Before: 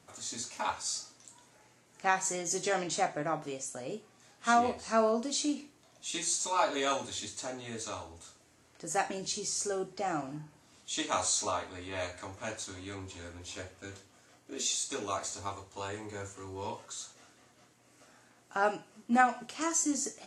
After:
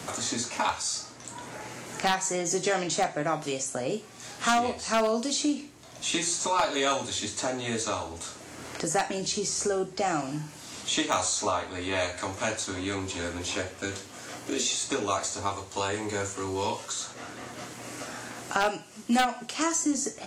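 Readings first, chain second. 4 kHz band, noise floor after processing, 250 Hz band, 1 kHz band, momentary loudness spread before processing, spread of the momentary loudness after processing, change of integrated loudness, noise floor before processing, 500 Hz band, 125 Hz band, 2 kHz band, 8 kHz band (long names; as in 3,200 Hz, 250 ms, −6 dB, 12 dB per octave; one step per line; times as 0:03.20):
+7.0 dB, −46 dBFS, +6.0 dB, +3.5 dB, 15 LU, 14 LU, +4.5 dB, −64 dBFS, +5.0 dB, +8.0 dB, +5.0 dB, +4.5 dB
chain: wavefolder on the positive side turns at −19 dBFS
multiband upward and downward compressor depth 70%
level +6 dB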